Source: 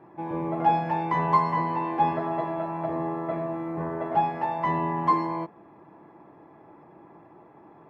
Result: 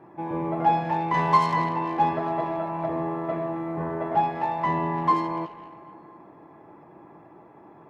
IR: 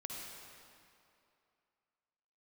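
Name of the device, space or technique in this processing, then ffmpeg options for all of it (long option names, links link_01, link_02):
saturated reverb return: -filter_complex "[0:a]asplit=2[link_01][link_02];[1:a]atrim=start_sample=2205[link_03];[link_02][link_03]afir=irnorm=-1:irlink=0,asoftclip=type=tanh:threshold=-29dB,volume=-8.5dB[link_04];[link_01][link_04]amix=inputs=2:normalize=0,asettb=1/sr,asplit=3[link_05][link_06][link_07];[link_05]atrim=end=1.144[link_08];[link_06]atrim=start=1.14:end=1.69,asetpts=PTS-STARTPTS,afade=type=in:duration=0.004:curve=qsin,afade=type=out:start_time=0.546:duration=0.004:curve=qsin,highshelf=frequency=2500:gain=10[link_09];[link_07]atrim=start=1.686[link_10];[link_08][link_09]acrossfade=duration=0.004:curve1=hsin:curve2=qsin[link_11];[link_11][link_10]acrossfade=duration=0.004:curve1=qsin:curve2=hsin"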